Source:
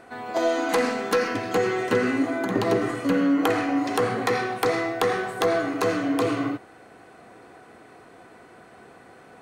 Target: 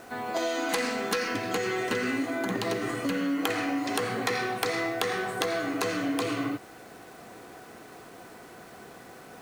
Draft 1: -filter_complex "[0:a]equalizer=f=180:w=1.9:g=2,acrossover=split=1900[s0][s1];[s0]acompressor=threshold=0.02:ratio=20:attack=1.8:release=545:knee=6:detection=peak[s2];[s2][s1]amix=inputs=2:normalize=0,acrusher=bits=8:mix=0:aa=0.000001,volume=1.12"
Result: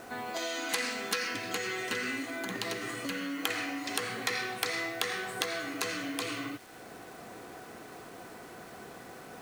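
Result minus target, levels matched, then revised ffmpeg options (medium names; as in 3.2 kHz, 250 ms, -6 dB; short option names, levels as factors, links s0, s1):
compression: peak gain reduction +9 dB
-filter_complex "[0:a]equalizer=f=180:w=1.9:g=2,acrossover=split=1900[s0][s1];[s0]acompressor=threshold=0.0596:ratio=20:attack=1.8:release=545:knee=6:detection=peak[s2];[s2][s1]amix=inputs=2:normalize=0,acrusher=bits=8:mix=0:aa=0.000001,volume=1.12"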